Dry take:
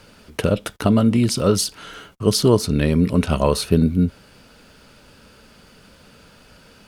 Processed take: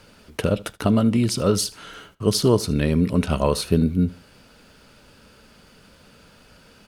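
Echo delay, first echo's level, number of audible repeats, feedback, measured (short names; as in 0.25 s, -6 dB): 77 ms, -21.5 dB, 2, 29%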